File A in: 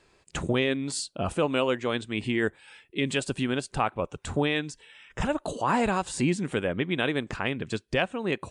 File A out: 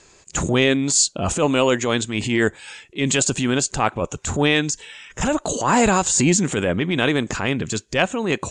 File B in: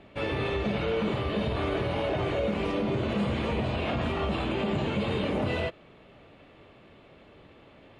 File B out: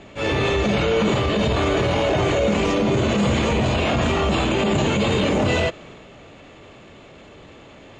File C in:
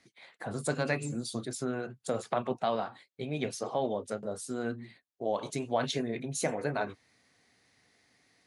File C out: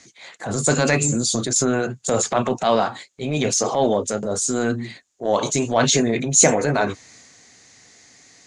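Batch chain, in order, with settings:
low-pass with resonance 6,900 Hz, resonance Q 6.7
transient designer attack −8 dB, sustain +3 dB
loudness normalisation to −20 LKFS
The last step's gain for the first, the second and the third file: +8.5, +9.5, +13.5 decibels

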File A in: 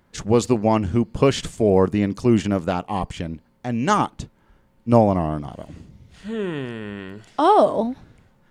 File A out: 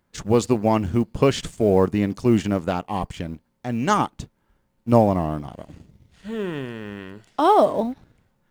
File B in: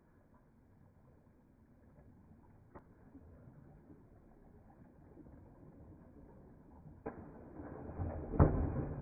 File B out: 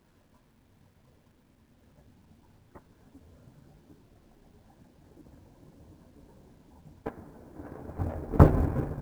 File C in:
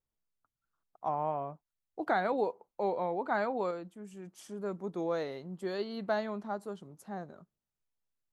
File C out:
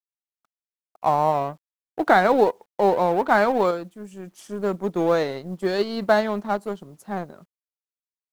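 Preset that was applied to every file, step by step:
mu-law and A-law mismatch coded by A
normalise the peak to −3 dBFS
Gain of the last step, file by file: −0.5, +11.5, +14.5 decibels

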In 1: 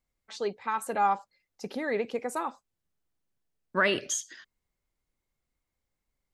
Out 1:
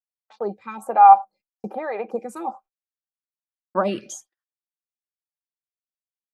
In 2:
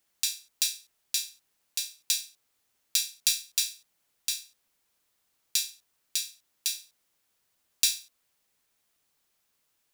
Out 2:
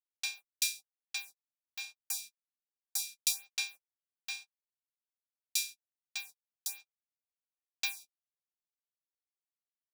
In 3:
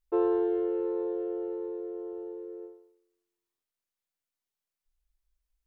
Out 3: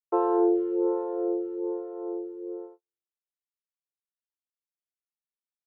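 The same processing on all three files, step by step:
flat-topped bell 830 Hz +12 dB
hollow resonant body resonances 210/330/770/2,400 Hz, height 14 dB, ringing for 70 ms
noise gate −38 dBFS, range −45 dB
phaser with staggered stages 1.2 Hz
level −3.5 dB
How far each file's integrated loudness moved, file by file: +11.5, −7.5, +3.5 LU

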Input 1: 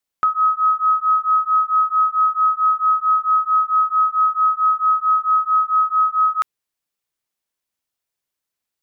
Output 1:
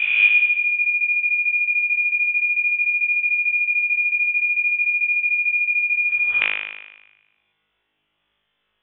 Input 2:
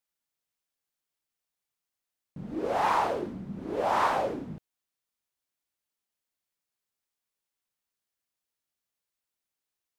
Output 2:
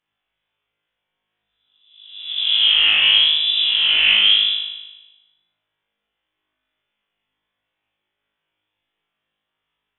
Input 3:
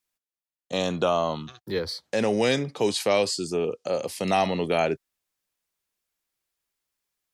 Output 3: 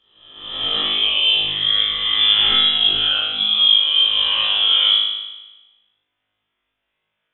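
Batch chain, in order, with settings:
peak hold with a rise ahead of every peak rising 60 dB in 0.93 s
Bessel high-pass filter 230 Hz, order 6
reversed playback
downward compressor 10 to 1, threshold −27 dBFS
reversed playback
spectral tilt −2 dB per octave
voice inversion scrambler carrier 3,700 Hz
on a send: flutter between parallel walls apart 3.3 metres, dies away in 1.1 s
on the sum: WMA 64 kbit/s 48,000 Hz
normalise the peak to −3 dBFS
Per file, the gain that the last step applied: +10.5, +9.0, +6.0 decibels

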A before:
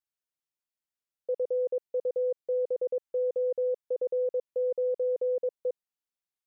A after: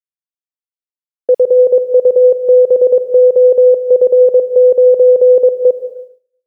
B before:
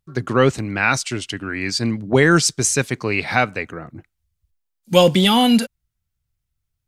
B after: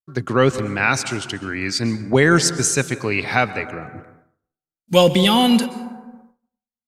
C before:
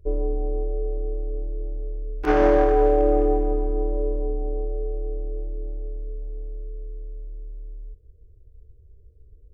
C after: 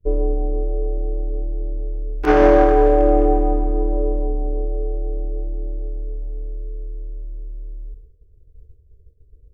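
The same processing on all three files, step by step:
dense smooth reverb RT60 1.5 s, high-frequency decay 0.35×, pre-delay 110 ms, DRR 13 dB
downward expander −42 dBFS
normalise the peak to −1.5 dBFS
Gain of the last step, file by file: +20.5, −0.5, +5.0 decibels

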